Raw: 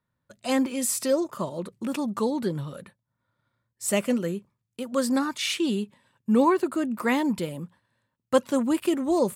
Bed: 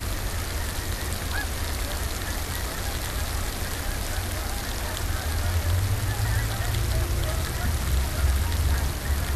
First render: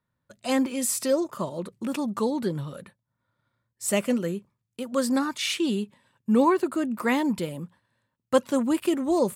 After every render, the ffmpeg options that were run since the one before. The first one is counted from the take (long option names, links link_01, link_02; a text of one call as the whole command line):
ffmpeg -i in.wav -af anull out.wav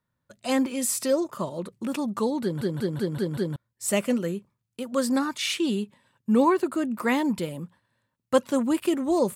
ffmpeg -i in.wav -filter_complex "[0:a]asplit=7[link_01][link_02][link_03][link_04][link_05][link_06][link_07];[link_01]atrim=end=2.612[link_08];[link_02]atrim=start=2.418:end=2.612[link_09];[link_03]atrim=start=2.418:end=2.612[link_10];[link_04]atrim=start=2.418:end=2.612[link_11];[link_05]atrim=start=2.418:end=2.612[link_12];[link_06]atrim=start=2.418:end=2.612[link_13];[link_07]atrim=start=3.558[link_14];[link_08][link_09]acrossfade=duration=0.004:curve1=hsin:curve2=hsin[link_15];[link_15][link_10]acrossfade=duration=0.004:curve1=hsin:curve2=hsin[link_16];[link_16][link_11]acrossfade=duration=0.004:curve1=hsin:curve2=hsin[link_17];[link_17][link_12]acrossfade=duration=0.004:curve1=hsin:curve2=hsin[link_18];[link_18][link_13]acrossfade=duration=0.004:curve1=hsin:curve2=hsin[link_19];[link_19][link_14]acrossfade=duration=0.004:curve1=hsin:curve2=hsin" out.wav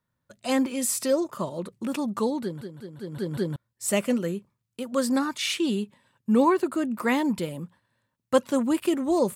ffmpeg -i in.wav -filter_complex "[0:a]asplit=3[link_01][link_02][link_03];[link_01]atrim=end=2.69,asetpts=PTS-STARTPTS,afade=type=out:start_time=2.29:duration=0.4:silence=0.223872[link_04];[link_02]atrim=start=2.69:end=2.98,asetpts=PTS-STARTPTS,volume=-13dB[link_05];[link_03]atrim=start=2.98,asetpts=PTS-STARTPTS,afade=type=in:duration=0.4:silence=0.223872[link_06];[link_04][link_05][link_06]concat=n=3:v=0:a=1" out.wav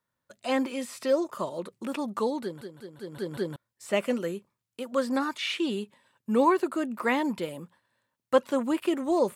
ffmpeg -i in.wav -filter_complex "[0:a]acrossover=split=3800[link_01][link_02];[link_02]acompressor=threshold=-47dB:ratio=4:attack=1:release=60[link_03];[link_01][link_03]amix=inputs=2:normalize=0,bass=frequency=250:gain=-10,treble=frequency=4000:gain=0" out.wav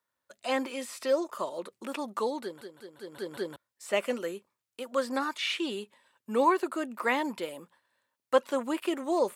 ffmpeg -i in.wav -af "highpass=69,equalizer=frequency=140:width=0.85:gain=-14" out.wav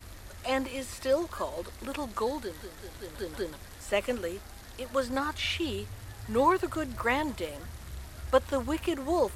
ffmpeg -i in.wav -i bed.wav -filter_complex "[1:a]volume=-17.5dB[link_01];[0:a][link_01]amix=inputs=2:normalize=0" out.wav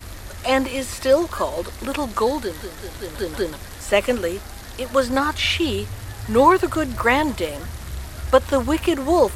ffmpeg -i in.wav -af "volume=10.5dB,alimiter=limit=-3dB:level=0:latency=1" out.wav